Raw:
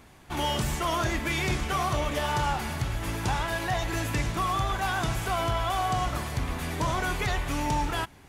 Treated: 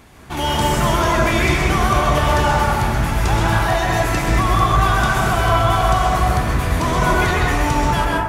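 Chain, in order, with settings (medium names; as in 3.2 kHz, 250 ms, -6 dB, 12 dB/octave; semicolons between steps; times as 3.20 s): plate-style reverb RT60 1.6 s, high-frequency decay 0.25×, pre-delay 115 ms, DRR -3.5 dB; trim +6.5 dB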